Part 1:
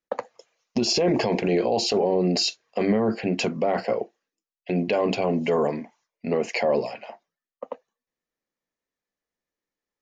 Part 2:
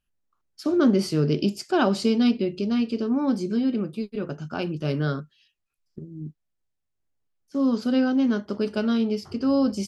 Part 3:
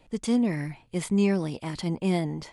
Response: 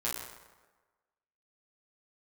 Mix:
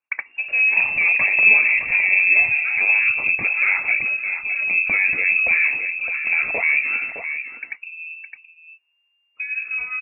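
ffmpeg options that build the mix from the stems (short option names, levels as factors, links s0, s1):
-filter_complex "[0:a]volume=1.26,asplit=2[s0][s1];[s1]volume=0.376[s2];[1:a]acompressor=threshold=0.0501:ratio=4,adelay=1850,volume=0.75,asplit=3[s3][s4][s5];[s4]volume=0.531[s6];[s5]volume=0.316[s7];[2:a]adelay=250,volume=0.944,asplit=2[s8][s9];[s9]volume=0.562[s10];[3:a]atrim=start_sample=2205[s11];[s6][s10]amix=inputs=2:normalize=0[s12];[s12][s11]afir=irnorm=-1:irlink=0[s13];[s2][s7]amix=inputs=2:normalize=0,aecho=0:1:613:1[s14];[s0][s3][s8][s13][s14]amix=inputs=5:normalize=0,lowshelf=f=160:g=6,lowpass=f=2400:t=q:w=0.5098,lowpass=f=2400:t=q:w=0.6013,lowpass=f=2400:t=q:w=0.9,lowpass=f=2400:t=q:w=2.563,afreqshift=-2800"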